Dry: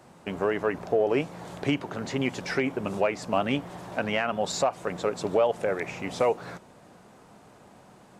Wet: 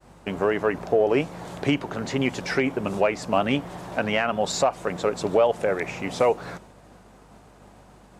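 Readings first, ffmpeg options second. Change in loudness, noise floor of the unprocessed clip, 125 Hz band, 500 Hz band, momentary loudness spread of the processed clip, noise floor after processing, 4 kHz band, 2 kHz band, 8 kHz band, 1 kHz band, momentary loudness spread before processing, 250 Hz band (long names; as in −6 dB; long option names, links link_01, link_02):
+3.5 dB, −54 dBFS, +3.5 dB, +3.5 dB, 9 LU, −51 dBFS, +3.5 dB, +3.5 dB, +3.5 dB, +3.5 dB, 9 LU, +3.5 dB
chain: -af "aeval=exprs='val(0)+0.00158*(sin(2*PI*50*n/s)+sin(2*PI*2*50*n/s)/2+sin(2*PI*3*50*n/s)/3+sin(2*PI*4*50*n/s)/4+sin(2*PI*5*50*n/s)/5)':channel_layout=same,agate=range=-33dB:threshold=-48dB:ratio=3:detection=peak,volume=3.5dB"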